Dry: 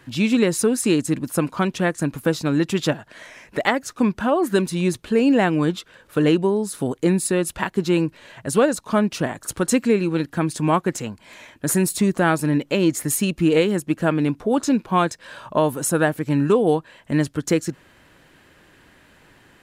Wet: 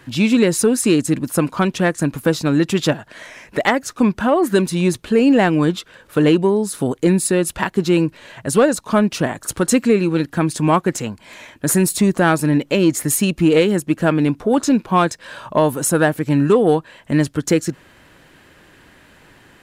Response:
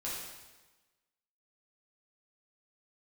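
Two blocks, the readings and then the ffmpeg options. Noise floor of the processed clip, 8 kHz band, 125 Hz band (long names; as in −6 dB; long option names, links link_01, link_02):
−50 dBFS, +4.0 dB, +4.0 dB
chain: -af "acontrast=33,volume=-1dB"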